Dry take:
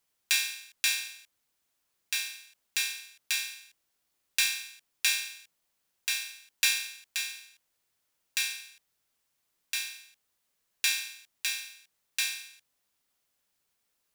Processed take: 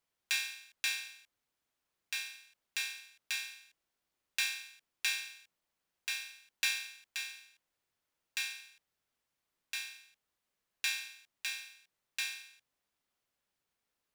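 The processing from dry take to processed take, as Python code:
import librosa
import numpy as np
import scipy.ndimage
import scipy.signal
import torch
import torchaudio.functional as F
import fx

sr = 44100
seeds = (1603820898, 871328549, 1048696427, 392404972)

y = fx.high_shelf(x, sr, hz=4400.0, db=-9.0)
y = y * librosa.db_to_amplitude(-3.0)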